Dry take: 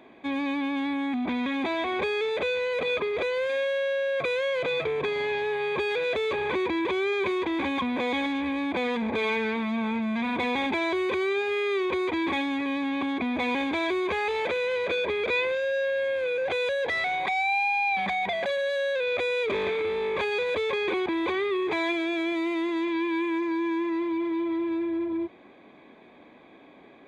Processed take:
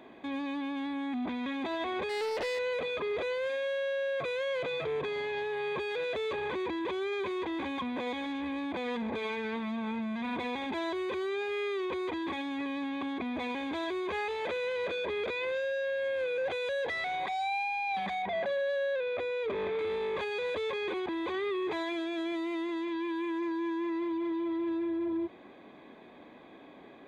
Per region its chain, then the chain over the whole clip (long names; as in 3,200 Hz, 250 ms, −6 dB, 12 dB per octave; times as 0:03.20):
0:02.09–0:02.59: hard clipping −25 dBFS + highs frequency-modulated by the lows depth 0.35 ms
0:18.22–0:19.79: low-pass filter 1,700 Hz 6 dB per octave + mains-hum notches 60/120/180/240/300/360/420/480 Hz
whole clip: notch filter 2,300 Hz, Q 11; brickwall limiter −27.5 dBFS